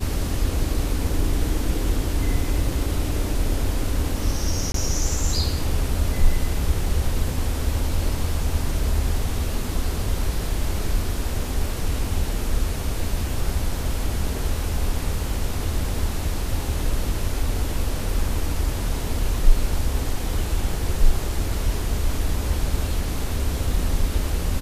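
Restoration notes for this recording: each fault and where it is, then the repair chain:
0:04.72–0:04.74: drop-out 23 ms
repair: repair the gap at 0:04.72, 23 ms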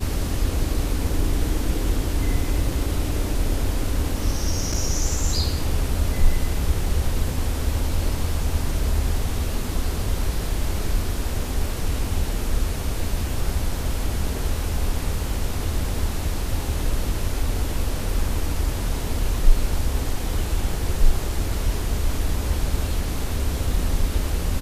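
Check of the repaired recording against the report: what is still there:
none of them is left

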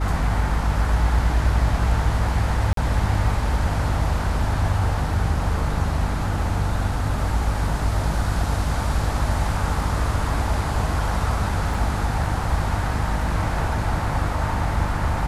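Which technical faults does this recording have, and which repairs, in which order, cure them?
mains hum 50 Hz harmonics 6 −26 dBFS
0:02.73–0:02.77: drop-out 43 ms
0:11.74: drop-out 3.7 ms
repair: hum removal 50 Hz, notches 6
repair the gap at 0:02.73, 43 ms
repair the gap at 0:11.74, 3.7 ms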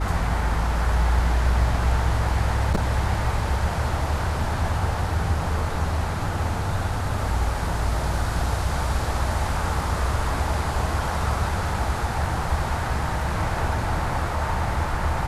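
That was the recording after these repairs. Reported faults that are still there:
none of them is left

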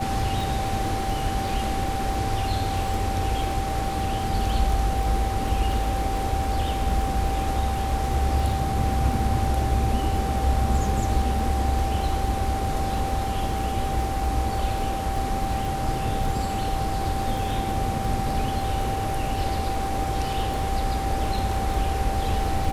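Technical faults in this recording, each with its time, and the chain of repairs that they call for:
surface crackle 20 per second −29 dBFS
whistle 780 Hz −28 dBFS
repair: click removal
notch filter 780 Hz, Q 30

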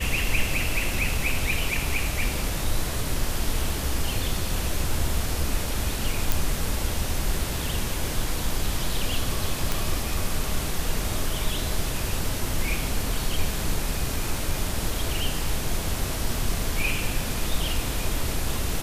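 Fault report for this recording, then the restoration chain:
0:06.32: click
0:09.72: click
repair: click removal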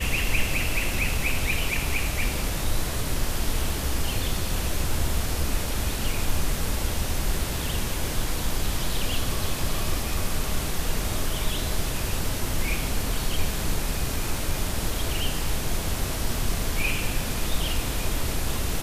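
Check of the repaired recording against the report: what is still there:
none of them is left

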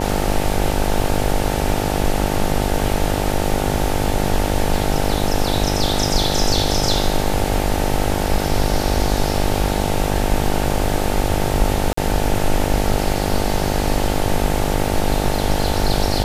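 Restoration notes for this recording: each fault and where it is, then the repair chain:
mains buzz 50 Hz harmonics 18 −22 dBFS
0:11.93–0:11.97: drop-out 44 ms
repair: hum removal 50 Hz, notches 18
repair the gap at 0:11.93, 44 ms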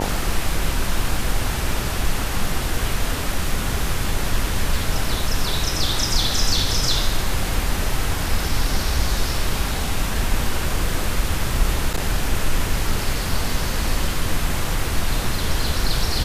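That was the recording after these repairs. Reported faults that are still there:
none of them is left

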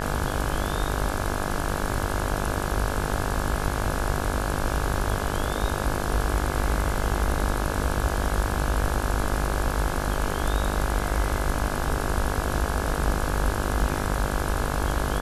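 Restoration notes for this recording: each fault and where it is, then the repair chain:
mains buzz 50 Hz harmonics 34 −30 dBFS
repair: hum removal 50 Hz, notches 34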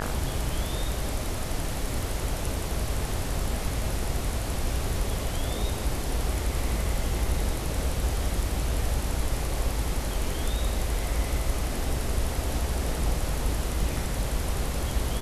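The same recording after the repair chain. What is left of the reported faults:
none of them is left

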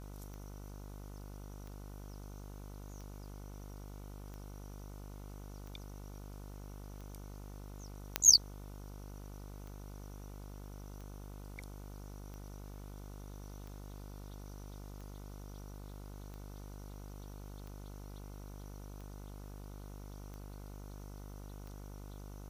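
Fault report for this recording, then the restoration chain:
mains buzz 50 Hz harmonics 30 −48 dBFS
scratch tick 45 rpm −36 dBFS
0:08.16: click −11 dBFS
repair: click removal
hum removal 50 Hz, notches 30

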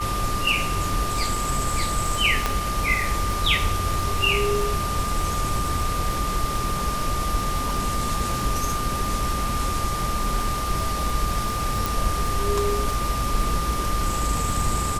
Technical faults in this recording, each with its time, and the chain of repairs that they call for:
surface crackle 51 per second −29 dBFS
whistle 1,200 Hz −27 dBFS
0:02.46: click −7 dBFS
0:11.86: click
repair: click removal
notch filter 1,200 Hz, Q 30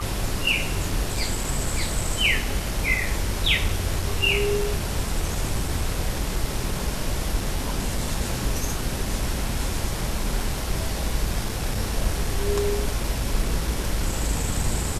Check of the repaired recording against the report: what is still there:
0:11.86: click

